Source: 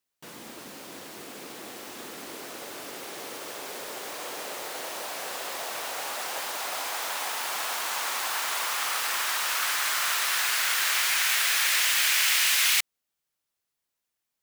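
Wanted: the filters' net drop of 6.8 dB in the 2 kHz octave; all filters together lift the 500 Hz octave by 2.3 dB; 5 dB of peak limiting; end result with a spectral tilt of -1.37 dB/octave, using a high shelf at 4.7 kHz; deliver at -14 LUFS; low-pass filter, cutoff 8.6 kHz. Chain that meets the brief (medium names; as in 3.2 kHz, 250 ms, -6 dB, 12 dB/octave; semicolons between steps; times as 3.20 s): low-pass 8.6 kHz; peaking EQ 500 Hz +3.5 dB; peaking EQ 2 kHz -8 dB; treble shelf 4.7 kHz -5 dB; trim +19 dB; peak limiter -2.5 dBFS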